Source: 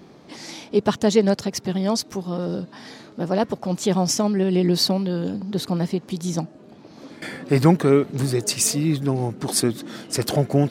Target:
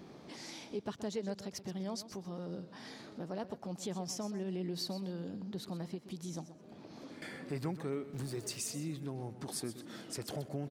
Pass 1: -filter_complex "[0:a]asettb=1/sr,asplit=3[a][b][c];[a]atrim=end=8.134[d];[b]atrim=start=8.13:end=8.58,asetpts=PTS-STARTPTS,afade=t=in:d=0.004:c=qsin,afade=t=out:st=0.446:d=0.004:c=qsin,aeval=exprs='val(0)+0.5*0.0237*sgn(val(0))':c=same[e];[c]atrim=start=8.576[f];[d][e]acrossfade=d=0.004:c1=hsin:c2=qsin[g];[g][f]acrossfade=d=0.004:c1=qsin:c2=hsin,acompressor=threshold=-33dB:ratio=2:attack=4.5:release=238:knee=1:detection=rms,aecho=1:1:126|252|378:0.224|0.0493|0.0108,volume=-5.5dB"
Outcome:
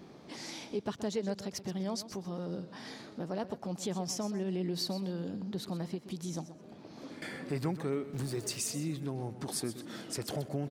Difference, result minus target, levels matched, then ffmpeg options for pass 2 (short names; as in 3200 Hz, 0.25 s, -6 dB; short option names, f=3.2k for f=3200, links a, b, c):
compressor: peak gain reduction -4 dB
-filter_complex "[0:a]asettb=1/sr,asplit=3[a][b][c];[a]atrim=end=8.134[d];[b]atrim=start=8.13:end=8.58,asetpts=PTS-STARTPTS,afade=t=in:d=0.004:c=qsin,afade=t=out:st=0.446:d=0.004:c=qsin,aeval=exprs='val(0)+0.5*0.0237*sgn(val(0))':c=same[e];[c]atrim=start=8.576[f];[d][e]acrossfade=d=0.004:c1=hsin:c2=qsin[g];[g][f]acrossfade=d=0.004:c1=qsin:c2=hsin,acompressor=threshold=-41dB:ratio=2:attack=4.5:release=238:knee=1:detection=rms,aecho=1:1:126|252|378:0.224|0.0493|0.0108,volume=-5.5dB"